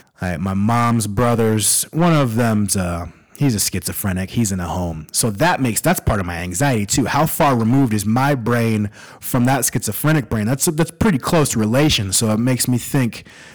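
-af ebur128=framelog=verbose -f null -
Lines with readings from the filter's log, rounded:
Integrated loudness:
  I:         -17.5 LUFS
  Threshold: -27.6 LUFS
Loudness range:
  LRA:         2.3 LU
  Threshold: -37.7 LUFS
  LRA low:   -19.2 LUFS
  LRA high:  -16.8 LUFS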